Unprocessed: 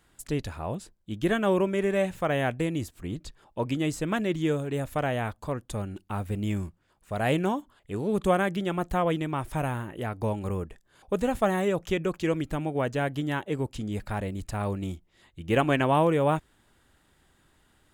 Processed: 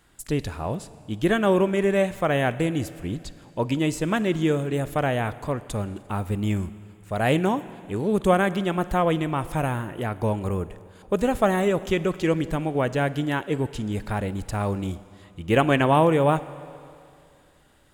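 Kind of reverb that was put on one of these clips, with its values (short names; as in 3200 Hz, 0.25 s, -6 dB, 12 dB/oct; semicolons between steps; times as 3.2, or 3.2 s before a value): Schroeder reverb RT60 2.5 s, DRR 15.5 dB; gain +4 dB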